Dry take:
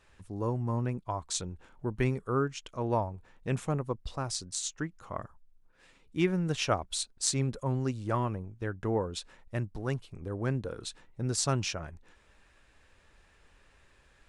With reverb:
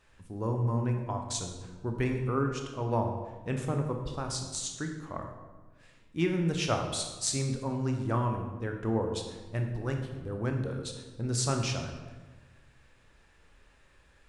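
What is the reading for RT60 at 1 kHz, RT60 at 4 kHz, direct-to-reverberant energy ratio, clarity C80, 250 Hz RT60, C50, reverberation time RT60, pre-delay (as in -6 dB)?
1.2 s, 0.90 s, 3.5 dB, 7.5 dB, 1.6 s, 5.5 dB, 1.3 s, 17 ms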